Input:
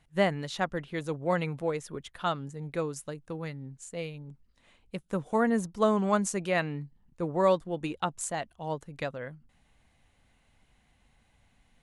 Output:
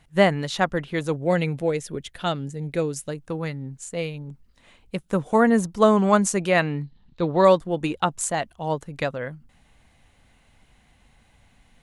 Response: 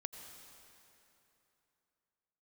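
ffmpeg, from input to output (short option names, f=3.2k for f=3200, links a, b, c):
-filter_complex "[0:a]asettb=1/sr,asplit=3[a][b][c];[a]atrim=end=1.144[d];[b]atrim=start=1.14:end=3.1,asetpts=PTS-STARTPTS,afade=t=in:d=0.004:c=qsin,afade=t=out:st=1.956:d=0.004:c=qsin,equalizer=f=1.1k:t=o:w=0.79:g=-10[e];[c]atrim=start=3.096[f];[d][e]acrossfade=d=0.004:c1=hsin:c2=qsin[g];[g][f]acrossfade=d=0.004:c1=qsin:c2=hsin,asettb=1/sr,asplit=3[h][i][j];[h]atrim=end=6.834[k];[i]atrim=start=6.83:end=7.45,asetpts=PTS-STARTPTS,afade=t=in:d=0.004:c=qsin,afade=t=out:st=0.616:d=0.004:c=qsin,lowpass=f=3.9k:t=q:w=5.6[l];[j]atrim=start=7.446[m];[k][l]acrossfade=d=0.004:c1=hsin:c2=qsin[n];[n][m]acrossfade=d=0.004:c1=qsin:c2=hsin,volume=8dB"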